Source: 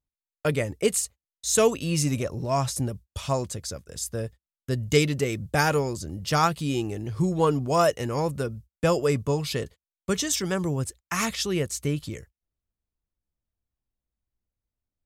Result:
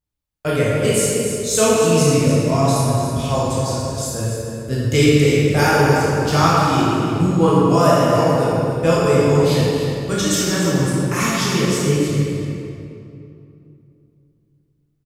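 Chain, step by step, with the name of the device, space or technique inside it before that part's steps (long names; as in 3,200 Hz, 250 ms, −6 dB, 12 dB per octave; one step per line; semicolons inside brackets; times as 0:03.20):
cave (single-tap delay 291 ms −9.5 dB; convolution reverb RT60 2.7 s, pre-delay 10 ms, DRR −7.5 dB)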